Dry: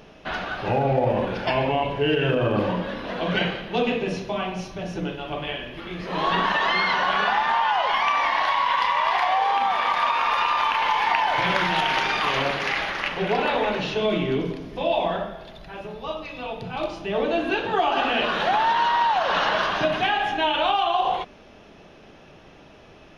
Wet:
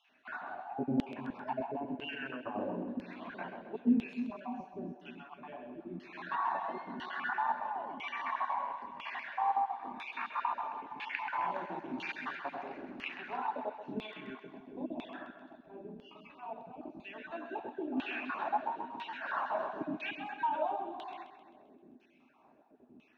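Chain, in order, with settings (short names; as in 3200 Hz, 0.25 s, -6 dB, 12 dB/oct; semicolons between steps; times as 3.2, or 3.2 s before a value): random spectral dropouts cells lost 33%; added harmonics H 2 -21 dB, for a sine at -6.5 dBFS; thirty-one-band EQ 250 Hz +12 dB, 500 Hz -11 dB, 1250 Hz -6 dB, 2000 Hz -7 dB, 3150 Hz -11 dB, 5000 Hz -8 dB; LFO band-pass saw down 1 Hz 230–3100 Hz; split-band echo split 390 Hz, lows 0.302 s, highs 0.131 s, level -10 dB; gain -4.5 dB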